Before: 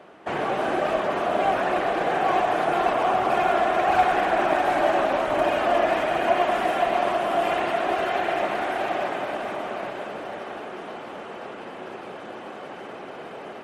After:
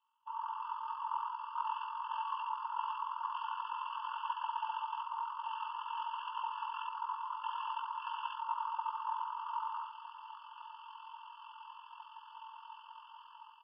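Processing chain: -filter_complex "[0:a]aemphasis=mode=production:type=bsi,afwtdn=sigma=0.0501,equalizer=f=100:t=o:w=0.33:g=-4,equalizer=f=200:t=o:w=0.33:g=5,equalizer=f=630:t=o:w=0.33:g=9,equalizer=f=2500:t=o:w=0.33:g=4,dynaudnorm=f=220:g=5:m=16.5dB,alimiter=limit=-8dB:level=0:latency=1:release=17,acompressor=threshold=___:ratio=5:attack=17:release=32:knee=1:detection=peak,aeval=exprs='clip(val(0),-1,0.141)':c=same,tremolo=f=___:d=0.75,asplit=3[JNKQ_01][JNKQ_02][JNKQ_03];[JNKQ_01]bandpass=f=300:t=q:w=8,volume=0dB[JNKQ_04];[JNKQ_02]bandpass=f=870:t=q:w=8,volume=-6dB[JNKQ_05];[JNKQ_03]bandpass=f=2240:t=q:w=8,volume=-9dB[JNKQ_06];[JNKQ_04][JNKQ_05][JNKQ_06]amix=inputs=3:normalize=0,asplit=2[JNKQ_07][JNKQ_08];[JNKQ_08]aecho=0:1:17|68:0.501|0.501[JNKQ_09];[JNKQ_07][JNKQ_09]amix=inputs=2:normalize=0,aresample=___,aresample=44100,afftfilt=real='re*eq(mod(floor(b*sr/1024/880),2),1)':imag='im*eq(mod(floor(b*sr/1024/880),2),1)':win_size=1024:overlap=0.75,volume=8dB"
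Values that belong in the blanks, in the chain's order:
-20dB, 43, 11025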